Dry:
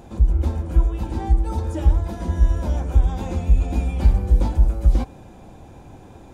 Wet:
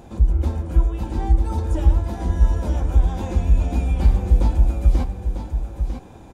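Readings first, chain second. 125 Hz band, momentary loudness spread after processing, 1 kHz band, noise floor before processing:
+0.5 dB, 9 LU, +0.5 dB, −44 dBFS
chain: single-tap delay 947 ms −8 dB

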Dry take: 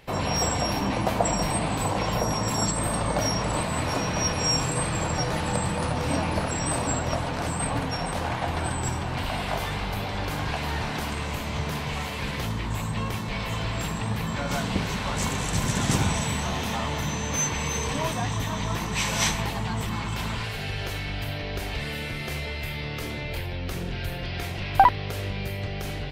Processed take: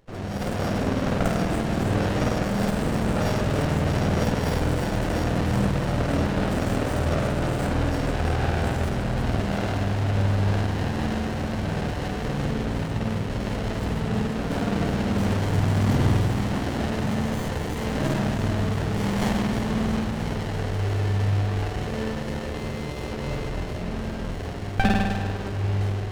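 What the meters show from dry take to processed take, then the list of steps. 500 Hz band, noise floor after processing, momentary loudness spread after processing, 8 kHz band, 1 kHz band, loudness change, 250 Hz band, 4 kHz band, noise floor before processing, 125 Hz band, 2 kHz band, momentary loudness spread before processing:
+3.5 dB, −31 dBFS, 6 LU, −11.0 dB, −3.5 dB, +2.0 dB, +5.5 dB, −5.5 dB, −32 dBFS, +5.0 dB, −1.0 dB, 7 LU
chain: Butterworth low-pass 8,400 Hz
automatic gain control gain up to 7 dB
on a send: delay with a high-pass on its return 337 ms, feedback 64%, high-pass 1,400 Hz, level −9 dB
on the sum: spring reverb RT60 2 s, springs 50 ms, chirp 55 ms, DRR −4 dB
windowed peak hold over 33 samples
level −7 dB

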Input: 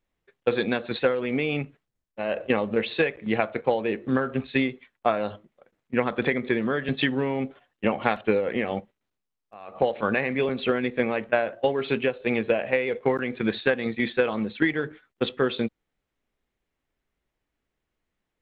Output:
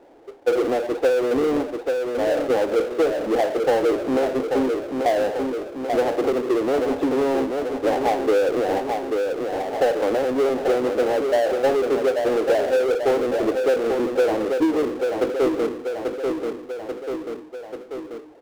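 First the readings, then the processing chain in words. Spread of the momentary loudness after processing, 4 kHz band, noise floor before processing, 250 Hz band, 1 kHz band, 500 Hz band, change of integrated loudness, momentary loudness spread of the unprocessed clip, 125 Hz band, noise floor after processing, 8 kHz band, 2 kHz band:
9 LU, −0.5 dB, −83 dBFS, +3.0 dB, +5.5 dB, +7.0 dB, +4.5 dB, 6 LU, −6.5 dB, −39 dBFS, can't be measured, −3.0 dB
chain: elliptic band-pass filter 290–850 Hz
repeating echo 838 ms, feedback 40%, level −9 dB
power curve on the samples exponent 0.5

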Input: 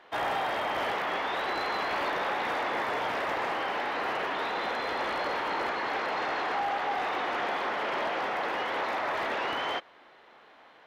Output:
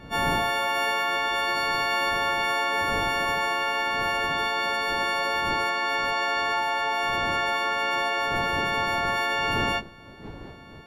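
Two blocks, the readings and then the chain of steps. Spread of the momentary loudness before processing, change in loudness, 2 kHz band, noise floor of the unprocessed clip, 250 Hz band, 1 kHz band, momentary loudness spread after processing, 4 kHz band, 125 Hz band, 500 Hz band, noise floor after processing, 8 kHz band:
1 LU, +6.0 dB, +7.0 dB, −56 dBFS, +4.5 dB, +4.5 dB, 1 LU, +8.5 dB, +13.0 dB, +2.5 dB, −45 dBFS, can't be measured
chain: every partial snapped to a pitch grid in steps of 4 semitones
wind on the microphone 330 Hz −40 dBFS

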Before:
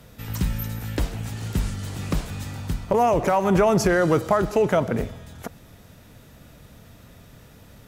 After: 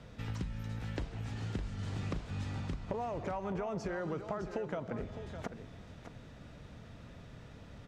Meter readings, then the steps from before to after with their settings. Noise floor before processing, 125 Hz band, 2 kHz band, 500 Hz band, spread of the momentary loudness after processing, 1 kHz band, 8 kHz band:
−49 dBFS, −11.5 dB, −16.5 dB, −18.0 dB, 15 LU, −18.0 dB, −21.5 dB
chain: downward compressor 10 to 1, threshold −31 dBFS, peak gain reduction 16.5 dB
high-frequency loss of the air 110 metres
single-tap delay 609 ms −10 dB
level −3.5 dB

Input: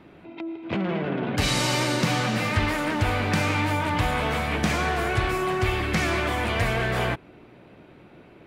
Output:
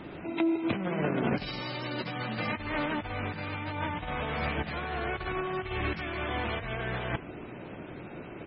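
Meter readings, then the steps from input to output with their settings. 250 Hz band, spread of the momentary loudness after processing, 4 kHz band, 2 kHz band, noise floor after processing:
−5.0 dB, 14 LU, −10.5 dB, −8.5 dB, −44 dBFS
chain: compressor whose output falls as the input rises −30 dBFS, ratio −0.5
repeating echo 75 ms, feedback 45%, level −23 dB
MP3 16 kbit/s 24,000 Hz

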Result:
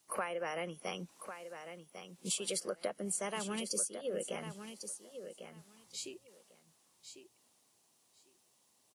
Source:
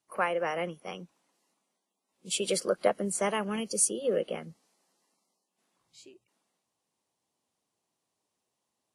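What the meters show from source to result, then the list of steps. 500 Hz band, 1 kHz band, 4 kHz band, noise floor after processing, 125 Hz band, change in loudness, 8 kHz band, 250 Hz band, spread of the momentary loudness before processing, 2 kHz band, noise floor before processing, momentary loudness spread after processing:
−9.0 dB, −8.5 dB, −4.5 dB, −72 dBFS, −5.5 dB, −9.5 dB, −5.5 dB, −7.5 dB, 13 LU, −7.0 dB, −84 dBFS, 19 LU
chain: high-shelf EQ 3,600 Hz +9 dB
downward compressor 5 to 1, threshold −42 dBFS, peak gain reduction 25 dB
on a send: repeating echo 1,099 ms, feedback 16%, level −9.5 dB
on the sum: level +5.5 dB

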